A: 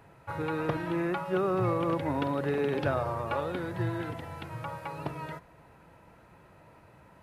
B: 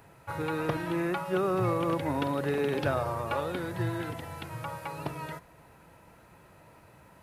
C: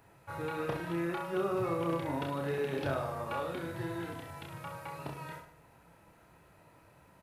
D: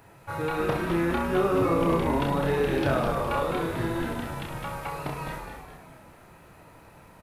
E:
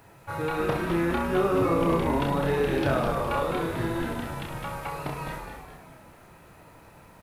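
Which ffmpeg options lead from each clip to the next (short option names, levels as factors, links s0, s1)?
-af "highshelf=f=5000:g=10"
-af "aecho=1:1:30|64.5|104.2|149.8|202.3:0.631|0.398|0.251|0.158|0.1,volume=0.447"
-filter_complex "[0:a]asplit=7[s0][s1][s2][s3][s4][s5][s6];[s1]adelay=207,afreqshift=-100,volume=0.501[s7];[s2]adelay=414,afreqshift=-200,volume=0.24[s8];[s3]adelay=621,afreqshift=-300,volume=0.115[s9];[s4]adelay=828,afreqshift=-400,volume=0.0556[s10];[s5]adelay=1035,afreqshift=-500,volume=0.0266[s11];[s6]adelay=1242,afreqshift=-600,volume=0.0127[s12];[s0][s7][s8][s9][s10][s11][s12]amix=inputs=7:normalize=0,volume=2.51"
-af "acrusher=bits=10:mix=0:aa=0.000001"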